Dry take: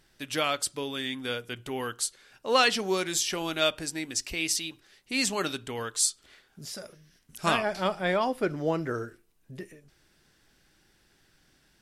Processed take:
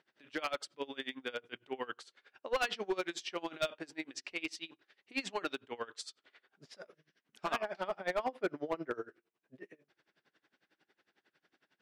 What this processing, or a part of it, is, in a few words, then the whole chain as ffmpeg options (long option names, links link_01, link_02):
helicopter radio: -af "highpass=310,lowpass=2900,aeval=exprs='val(0)*pow(10,-24*(0.5-0.5*cos(2*PI*11*n/s))/20)':channel_layout=same,asoftclip=type=hard:threshold=-26.5dB"